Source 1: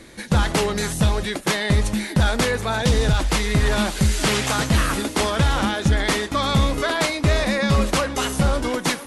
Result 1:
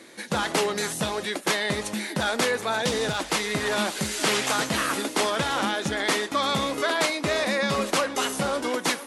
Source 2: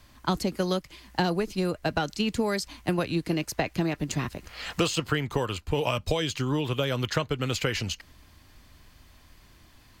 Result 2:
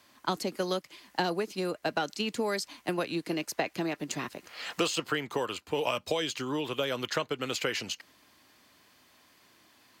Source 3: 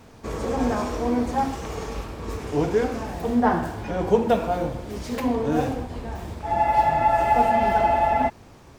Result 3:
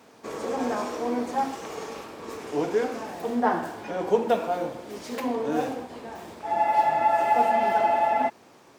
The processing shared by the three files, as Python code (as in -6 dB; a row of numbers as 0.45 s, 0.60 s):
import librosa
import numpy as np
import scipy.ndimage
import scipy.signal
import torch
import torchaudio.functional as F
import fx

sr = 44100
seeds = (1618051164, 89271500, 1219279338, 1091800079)

y = scipy.signal.sosfilt(scipy.signal.butter(2, 270.0, 'highpass', fs=sr, output='sos'), x)
y = F.gain(torch.from_numpy(y), -2.0).numpy()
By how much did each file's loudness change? -4.5 LU, -3.5 LU, -2.5 LU